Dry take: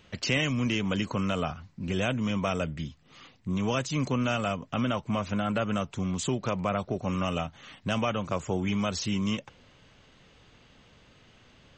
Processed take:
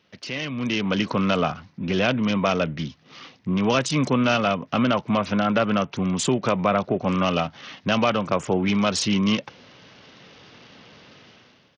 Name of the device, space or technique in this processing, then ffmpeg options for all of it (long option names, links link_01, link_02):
Bluetooth headset: -af "highpass=150,dynaudnorm=framelen=180:gausssize=7:maxgain=16dB,aresample=16000,aresample=44100,volume=-5.5dB" -ar 48000 -c:a sbc -b:a 64k